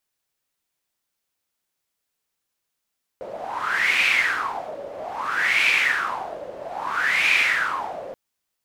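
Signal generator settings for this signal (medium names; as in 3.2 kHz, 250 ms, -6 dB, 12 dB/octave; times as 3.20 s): wind-like swept noise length 4.93 s, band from 550 Hz, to 2.4 kHz, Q 7.7, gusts 3, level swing 16 dB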